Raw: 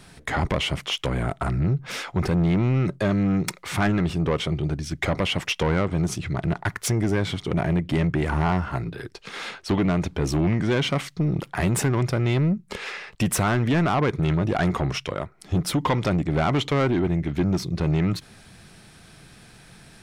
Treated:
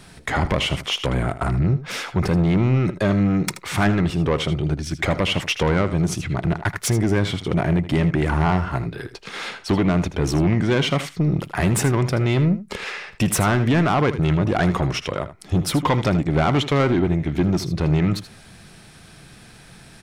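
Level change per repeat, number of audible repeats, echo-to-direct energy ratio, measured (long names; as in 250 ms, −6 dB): repeats not evenly spaced, 1, −13.0 dB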